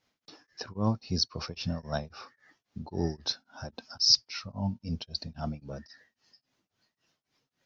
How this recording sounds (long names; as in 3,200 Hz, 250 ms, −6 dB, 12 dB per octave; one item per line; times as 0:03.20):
tremolo triangle 3.7 Hz, depth 100%